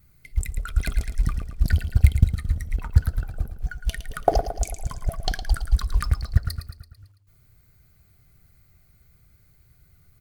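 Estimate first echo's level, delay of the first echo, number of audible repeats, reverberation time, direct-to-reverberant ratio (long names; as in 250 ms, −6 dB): −10.0 dB, 111 ms, 5, no reverb audible, no reverb audible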